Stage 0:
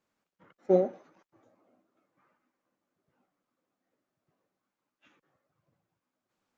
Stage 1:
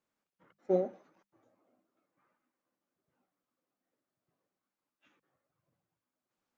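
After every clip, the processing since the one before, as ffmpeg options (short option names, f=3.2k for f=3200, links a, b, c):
-af "bandreject=f=50:t=h:w=6,bandreject=f=100:t=h:w=6,bandreject=f=150:t=h:w=6,bandreject=f=200:t=h:w=6,volume=-5.5dB"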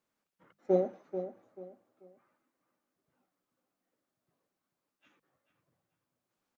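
-filter_complex "[0:a]asplit=2[a][b];[b]adelay=437,lowpass=f=3.4k:p=1,volume=-10dB,asplit=2[c][d];[d]adelay=437,lowpass=f=3.4k:p=1,volume=0.29,asplit=2[e][f];[f]adelay=437,lowpass=f=3.4k:p=1,volume=0.29[g];[a][c][e][g]amix=inputs=4:normalize=0,volume=2dB"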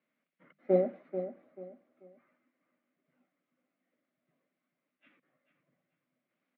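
-af "highpass=f=150:w=0.5412,highpass=f=150:w=1.3066,equalizer=f=150:t=q:w=4:g=5,equalizer=f=250:t=q:w=4:g=7,equalizer=f=420:t=q:w=4:g=-3,equalizer=f=610:t=q:w=4:g=5,equalizer=f=880:t=q:w=4:g=-8,equalizer=f=2.1k:t=q:w=4:g=9,lowpass=f=3.4k:w=0.5412,lowpass=f=3.4k:w=1.3066"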